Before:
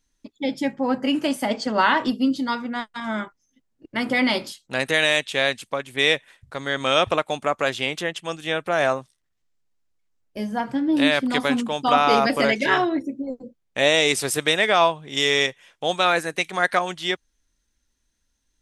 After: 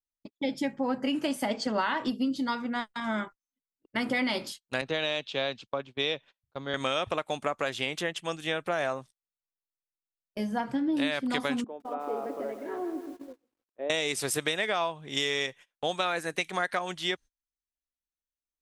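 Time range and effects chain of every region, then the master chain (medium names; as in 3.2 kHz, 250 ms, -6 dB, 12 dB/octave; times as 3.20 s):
4.81–6.74 s: low-pass 5 kHz 24 dB/octave + peaking EQ 1.9 kHz -9.5 dB 0.64 oct + three bands expanded up and down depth 40%
11.64–13.90 s: ladder band-pass 440 Hz, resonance 40% + bit-crushed delay 159 ms, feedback 55%, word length 8-bit, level -9 dB
whole clip: gate -39 dBFS, range -27 dB; compression, threshold -22 dBFS; trim -3 dB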